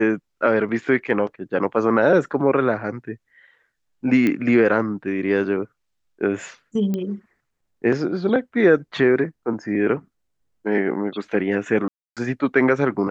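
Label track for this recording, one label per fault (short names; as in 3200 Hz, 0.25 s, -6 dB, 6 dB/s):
4.270000	4.270000	pop -10 dBFS
6.940000	6.940000	pop -14 dBFS
11.880000	12.170000	gap 0.287 s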